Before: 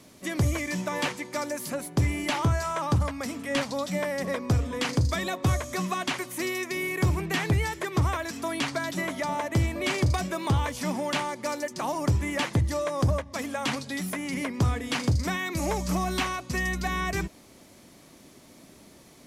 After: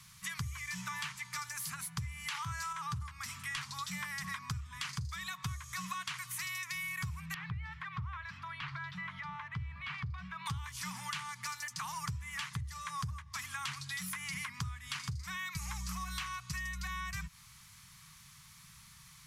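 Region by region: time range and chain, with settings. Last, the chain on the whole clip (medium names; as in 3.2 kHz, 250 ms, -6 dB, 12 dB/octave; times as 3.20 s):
2.28–2.73 s: short-mantissa float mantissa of 8-bit + high-pass 310 Hz 6 dB/octave + level flattener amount 100%
7.34–10.46 s: compression 2:1, threshold -32 dBFS + distance through air 360 m
whole clip: elliptic band-stop 150–1100 Hz, stop band 60 dB; compression 12:1, threshold -36 dBFS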